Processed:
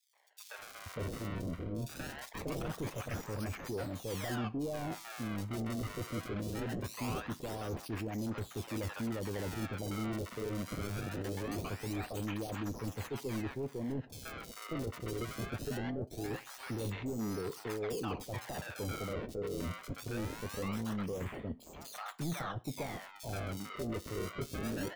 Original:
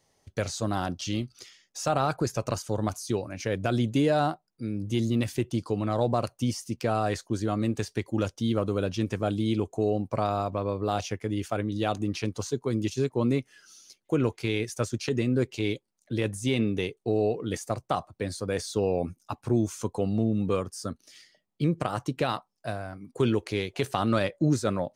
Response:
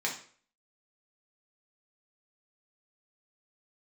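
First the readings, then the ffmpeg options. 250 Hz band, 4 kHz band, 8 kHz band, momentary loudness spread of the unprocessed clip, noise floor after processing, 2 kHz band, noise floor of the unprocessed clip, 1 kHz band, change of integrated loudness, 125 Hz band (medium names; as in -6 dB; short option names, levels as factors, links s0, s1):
-10.5 dB, -9.5 dB, -8.0 dB, 7 LU, -53 dBFS, -6.5 dB, -74 dBFS, -12.0 dB, -10.5 dB, -10.0 dB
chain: -filter_complex "[0:a]lowpass=7200,areverse,acompressor=threshold=0.0158:ratio=6,areverse,acrusher=samples=30:mix=1:aa=0.000001:lfo=1:lforange=48:lforate=0.22,asoftclip=type=hard:threshold=0.0106,acrossover=split=770|3500[s0][s1][s2];[s1]adelay=130[s3];[s0]adelay=590[s4];[s4][s3][s2]amix=inputs=3:normalize=0,asplit=2[s5][s6];[1:a]atrim=start_sample=2205,atrim=end_sample=6174[s7];[s6][s7]afir=irnorm=-1:irlink=0,volume=0.112[s8];[s5][s8]amix=inputs=2:normalize=0,volume=1.88"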